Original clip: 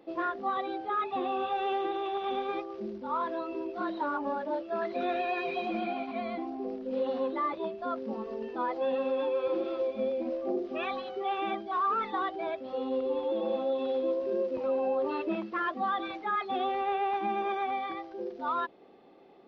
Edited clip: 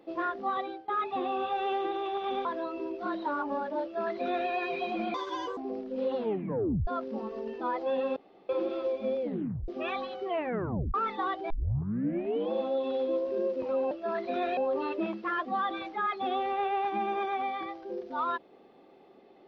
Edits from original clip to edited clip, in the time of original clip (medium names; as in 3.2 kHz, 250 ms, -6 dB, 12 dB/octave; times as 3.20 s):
0.60–0.88 s: fade out, to -20.5 dB
2.45–3.20 s: delete
4.58–5.24 s: copy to 14.86 s
5.89–6.52 s: speed 146%
7.11 s: tape stop 0.71 s
9.11–9.44 s: room tone
10.17 s: tape stop 0.46 s
11.20 s: tape stop 0.69 s
12.45 s: tape start 1.01 s